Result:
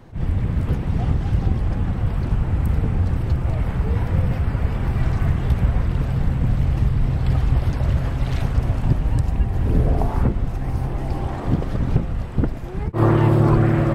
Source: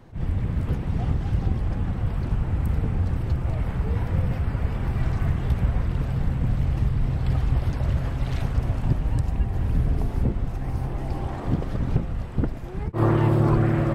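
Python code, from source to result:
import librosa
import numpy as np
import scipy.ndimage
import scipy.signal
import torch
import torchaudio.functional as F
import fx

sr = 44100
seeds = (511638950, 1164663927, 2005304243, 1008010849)

y = fx.peak_eq(x, sr, hz=fx.line((9.65, 320.0), (10.27, 1300.0)), db=10.5, octaves=1.2, at=(9.65, 10.27), fade=0.02)
y = F.gain(torch.from_numpy(y), 4.0).numpy()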